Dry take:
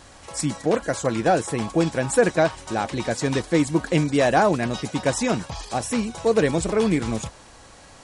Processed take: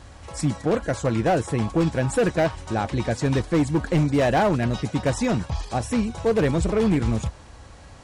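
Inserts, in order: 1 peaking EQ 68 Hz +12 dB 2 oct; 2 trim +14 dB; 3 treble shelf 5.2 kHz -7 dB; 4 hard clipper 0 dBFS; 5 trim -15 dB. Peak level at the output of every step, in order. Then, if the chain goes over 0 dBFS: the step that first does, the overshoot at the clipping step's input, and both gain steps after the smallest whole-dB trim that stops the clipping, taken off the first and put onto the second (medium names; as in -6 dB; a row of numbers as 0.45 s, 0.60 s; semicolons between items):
-5.0 dBFS, +9.0 dBFS, +9.0 dBFS, 0.0 dBFS, -15.0 dBFS; step 2, 9.0 dB; step 2 +5 dB, step 5 -6 dB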